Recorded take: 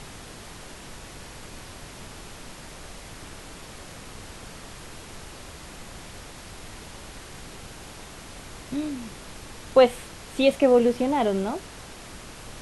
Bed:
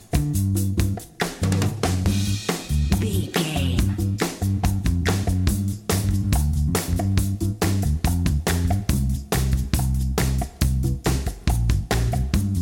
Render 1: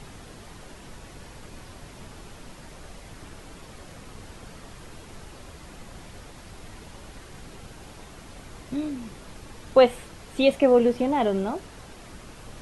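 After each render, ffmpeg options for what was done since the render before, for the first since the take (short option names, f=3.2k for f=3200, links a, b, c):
-af "afftdn=nr=6:nf=-43"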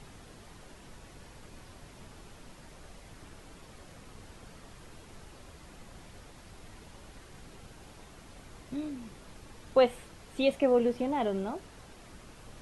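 -af "volume=-7dB"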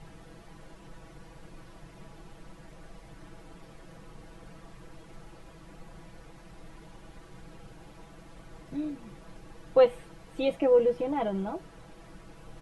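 -af "highshelf=f=2.5k:g=-9,aecho=1:1:6.1:0.81"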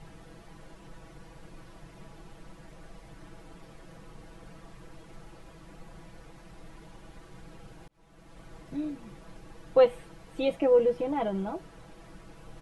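-filter_complex "[0:a]asplit=2[a][b];[a]atrim=end=7.88,asetpts=PTS-STARTPTS,afade=t=out:st=7.876:d=0.004:c=hsin[c];[b]atrim=start=7.88,asetpts=PTS-STARTPTS,afade=t=in:d=0.56[d];[c][d]concat=n=2:v=0:a=1"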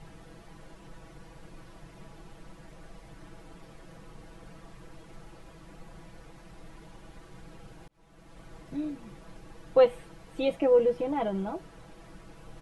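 -af anull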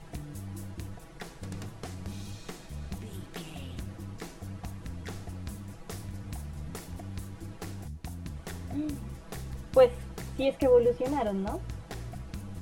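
-filter_complex "[1:a]volume=-19dB[a];[0:a][a]amix=inputs=2:normalize=0"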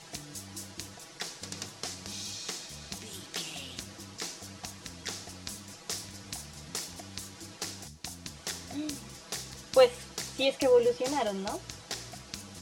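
-af "highpass=f=320:p=1,equalizer=f=5.5k:w=0.66:g=15"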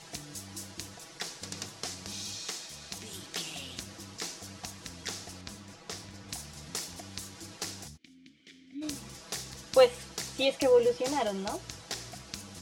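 -filter_complex "[0:a]asettb=1/sr,asplit=3[a][b][c];[a]atrim=end=2.454[d];[b]atrim=start=2.45:end=2.96,asetpts=PTS-STARTPTS,afade=t=in:d=0.004:c=qsin,afade=t=out:st=0.506:d=0.004:c=qsin,lowshelf=f=320:g=-6.5[e];[c]atrim=start=2.956[f];[d][e]acrossfade=d=0.004:c1=hsin:c2=qsin[g];[g][f]acrossfade=d=0.004:c1=qsin:c2=hsin,asettb=1/sr,asplit=3[h][i][j];[h]atrim=end=5.414[k];[i]atrim=start=5.41:end=6.29,asetpts=PTS-STARTPTS,afade=t=in:d=0.004:c=qsin,afade=t=out:st=0.876:d=0.004:c=qsin,lowpass=f=3.1k:p=1[l];[j]atrim=start=6.286[m];[k][l]acrossfade=d=0.004:c1=hsin:c2=qsin[n];[n][m]acrossfade=d=0.004:c1=qsin:c2=hsin,asplit=3[o][p][q];[o]afade=t=out:st=7.96:d=0.02[r];[p]asplit=3[s][t][u];[s]bandpass=f=270:t=q:w=8,volume=0dB[v];[t]bandpass=f=2.29k:t=q:w=8,volume=-6dB[w];[u]bandpass=f=3.01k:t=q:w=8,volume=-9dB[x];[v][w][x]amix=inputs=3:normalize=0,afade=t=in:st=7.96:d=0.02,afade=t=out:st=8.81:d=0.02[y];[q]afade=t=in:st=8.81:d=0.02[z];[r][y][z]amix=inputs=3:normalize=0"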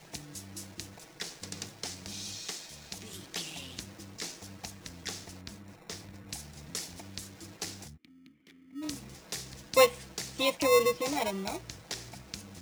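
-filter_complex "[0:a]acrossover=split=360|1100|2100[a][b][c][d];[b]acrusher=samples=28:mix=1:aa=0.000001[e];[d]aeval=exprs='sgn(val(0))*max(abs(val(0))-0.002,0)':c=same[f];[a][e][c][f]amix=inputs=4:normalize=0"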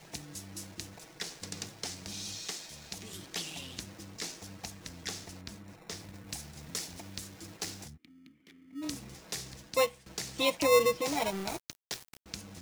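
-filter_complex "[0:a]asettb=1/sr,asplit=3[a][b][c];[a]atrim=end=6.014[d];[b]atrim=start=6.01:end=7.86,asetpts=PTS-STARTPTS,afade=t=in:d=0.004:c=qsin,afade=t=out:st=1.846:d=0.004:c=qsin,acrusher=bits=3:mode=log:mix=0:aa=0.000001[e];[c]atrim=start=7.856[f];[d][e]acrossfade=d=0.004:c1=hsin:c2=qsin[g];[g][f]acrossfade=d=0.004:c1=qsin:c2=hsin,asettb=1/sr,asplit=3[h][i][j];[h]atrim=end=11.064[k];[i]atrim=start=11.06:end=12.26,asetpts=PTS-STARTPTS,afade=t=in:d=0.004:c=qsin,afade=t=out:st=1.196:d=0.004:c=qsin,aeval=exprs='val(0)*gte(abs(val(0)),0.0133)':c=same[l];[j]atrim=start=12.256[m];[k][l]acrossfade=d=0.004:c1=hsin:c2=qsin[n];[n][m]acrossfade=d=0.004:c1=qsin:c2=hsin,asplit=2[o][p];[o]atrim=end=10.06,asetpts=PTS-STARTPTS,afade=t=out:st=9.47:d=0.59:silence=0.158489[q];[p]atrim=start=10.06,asetpts=PTS-STARTPTS,afade=t=in:d=0.004:c=hsin:silence=0.158489[r];[q][r]concat=n=2:v=0:a=1"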